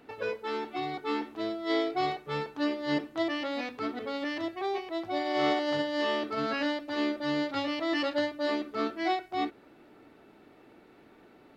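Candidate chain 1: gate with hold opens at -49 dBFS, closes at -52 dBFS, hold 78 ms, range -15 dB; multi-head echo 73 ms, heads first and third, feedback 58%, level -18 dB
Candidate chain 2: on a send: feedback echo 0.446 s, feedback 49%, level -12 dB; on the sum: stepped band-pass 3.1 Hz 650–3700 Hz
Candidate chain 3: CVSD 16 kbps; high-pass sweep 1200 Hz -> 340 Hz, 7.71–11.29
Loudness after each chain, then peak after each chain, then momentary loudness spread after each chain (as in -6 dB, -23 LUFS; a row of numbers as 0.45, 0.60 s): -31.5, -41.0, -32.5 LUFS; -16.5, -23.5, -15.5 dBFS; 6, 11, 7 LU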